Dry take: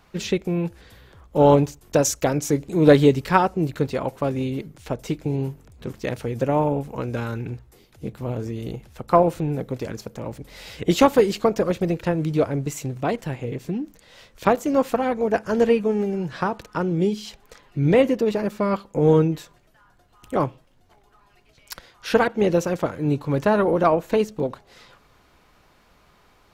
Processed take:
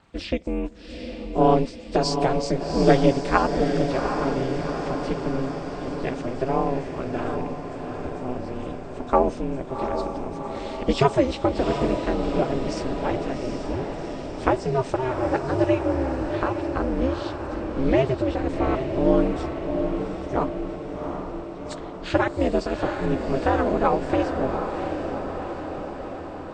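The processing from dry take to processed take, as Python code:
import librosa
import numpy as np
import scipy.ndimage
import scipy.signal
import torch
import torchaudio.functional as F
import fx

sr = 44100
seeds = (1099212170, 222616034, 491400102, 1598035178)

y = fx.freq_compress(x, sr, knee_hz=2900.0, ratio=1.5)
y = y * np.sin(2.0 * np.pi * 130.0 * np.arange(len(y)) / sr)
y = fx.echo_diffused(y, sr, ms=761, feedback_pct=65, wet_db=-6.0)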